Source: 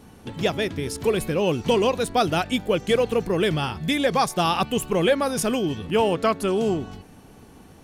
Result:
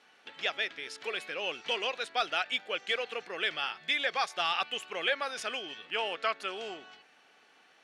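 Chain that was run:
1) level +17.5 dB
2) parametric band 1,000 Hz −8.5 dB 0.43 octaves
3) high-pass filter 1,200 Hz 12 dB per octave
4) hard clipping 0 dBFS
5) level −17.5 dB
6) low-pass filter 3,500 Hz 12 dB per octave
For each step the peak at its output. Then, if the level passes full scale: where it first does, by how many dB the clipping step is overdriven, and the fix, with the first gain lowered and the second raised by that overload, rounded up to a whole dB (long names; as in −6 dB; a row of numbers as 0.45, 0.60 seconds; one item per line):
+6.0, +7.5, +5.0, 0.0, −17.5, −17.5 dBFS
step 1, 5.0 dB
step 1 +12.5 dB, step 5 −12.5 dB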